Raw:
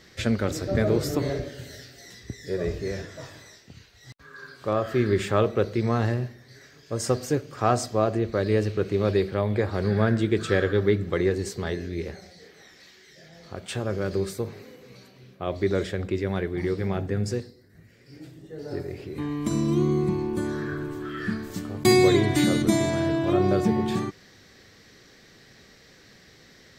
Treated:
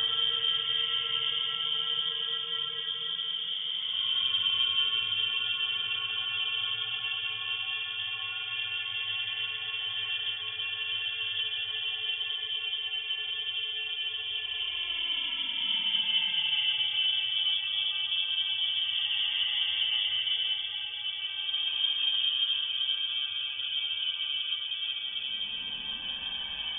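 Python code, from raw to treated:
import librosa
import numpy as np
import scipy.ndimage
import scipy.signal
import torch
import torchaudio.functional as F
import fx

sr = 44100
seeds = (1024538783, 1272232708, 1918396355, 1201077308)

y = fx.paulstretch(x, sr, seeds[0], factor=18.0, window_s=0.1, from_s=22.45)
y = fx.freq_invert(y, sr, carrier_hz=3400)
y = y * librosa.db_to_amplitude(-9.0)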